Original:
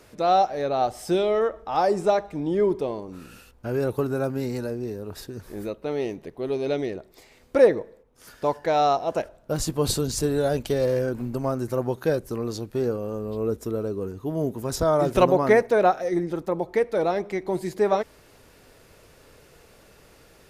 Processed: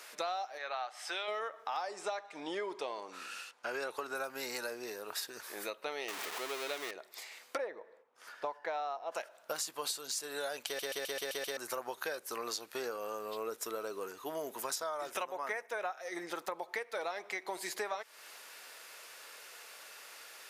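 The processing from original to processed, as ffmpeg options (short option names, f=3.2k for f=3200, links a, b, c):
-filter_complex "[0:a]asplit=3[a][b][c];[a]afade=t=out:st=0.57:d=0.02[d];[b]bandpass=f=1.7k:t=q:w=0.85,afade=t=in:st=0.57:d=0.02,afade=t=out:st=1.27:d=0.02[e];[c]afade=t=in:st=1.27:d=0.02[f];[d][e][f]amix=inputs=3:normalize=0,asettb=1/sr,asplit=3[g][h][i];[g]atrim=end=1.814[j];[h]atrim=start=1.81:end=4.15,asetpts=PTS-STARTPTS,afade=t=in:d=0.004:c=qsin,afade=t=out:st=2.336:d=0.004:c=qsin,highpass=120,lowpass=7.9k[k];[i]atrim=start=4.146[l];[j][k]acrossfade=d=0.004:c1=hsin:c2=qsin[m];[m][l]acrossfade=d=0.004:c1=qsin:c2=hsin,asettb=1/sr,asplit=3[n][o][p];[n]atrim=end=6.084[q];[o]atrim=start=6.08:end=6.91,asetpts=PTS-STARTPTS,afade=t=in:d=0.004:c=qsin,afade=t=out:st=0.826:d=0.004:c=qsin,aeval=exprs='val(0)+0.5*0.0355*sgn(val(0))':c=same[r];[p]atrim=start=6.906[s];[q][r]acrossfade=d=0.004:c1=hsin:c2=qsin[t];[t][s]acrossfade=d=0.004:c1=qsin:c2=hsin,asplit=3[u][v][w];[u]afade=t=out:st=7.56:d=0.02[x];[v]lowpass=f=1.1k:p=1,afade=t=in:st=7.56:d=0.02,afade=t=out:st=9.11:d=0.02[y];[w]afade=t=in:st=9.11:d=0.02[z];[x][y][z]amix=inputs=3:normalize=0,asettb=1/sr,asplit=3[aa][ab][ac];[aa]atrim=end=15.114[ad];[ab]atrim=start=15.11:end=15.97,asetpts=PTS-STARTPTS,afade=t=in:d=0.004:c=qsin,afade=t=out:st=0.856:d=0.004:c=qsin,equalizer=f=4.3k:w=7.5:g=-13[ae];[ac]atrim=start=15.966[af];[ad][ae]acrossfade=d=0.004:c1=hsin:c2=qsin[ag];[ag][af]acrossfade=d=0.004:c1=qsin:c2=hsin,asplit=8[ah][ai][aj][ak][al][am][an][ao];[ah]atrim=end=10.792[ap];[ai]atrim=start=10.658:end=10.792[aq];[aj]atrim=start=10.658:end=10.792[ar];[ak]atrim=start=10.658:end=10.792[as];[al]atrim=start=10.658:end=10.792[at];[am]atrim=start=10.658:end=10.792[au];[an]atrim=start=10.658:end=10.792[av];[ao]atrim=start=11.568[aw];[ap][aq]acrossfade=d=0.004:c1=hsin:c2=hsin[ax];[ax][ar]acrossfade=d=0.004:c1=hsin:c2=hsin[ay];[ay][as]acrossfade=d=0.004:c1=hsin:c2=hsin[az];[az][at]acrossfade=d=0.004:c1=hsin:c2=hsin[ba];[ba][au]acrossfade=d=0.004:c1=hsin:c2=hsin[bb];[bb][av]acrossfade=d=0.004:c1=hsin:c2=hsin[bc];[bc][aw]acrossfade=d=0.004:c1=hsin:c2=hsin,highpass=1.1k,acompressor=threshold=-41dB:ratio=12,volume=6.5dB"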